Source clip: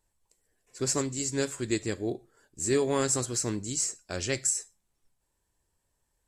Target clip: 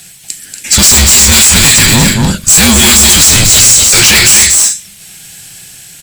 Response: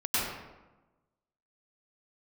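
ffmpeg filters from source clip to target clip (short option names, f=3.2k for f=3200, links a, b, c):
-filter_complex "[0:a]highpass=f=47:p=1,highshelf=f=1.7k:t=q:w=1.5:g=13,dynaudnorm=f=200:g=9:m=7dB,asoftclip=type=tanh:threshold=-34dB,afreqshift=-200,asetrate=45938,aresample=44100,asplit=2[a][b];[b]aecho=0:1:236.2|279.9:0.501|0.251[c];[a][c]amix=inputs=2:normalize=0,apsyclip=35.5dB,volume=-1.5dB"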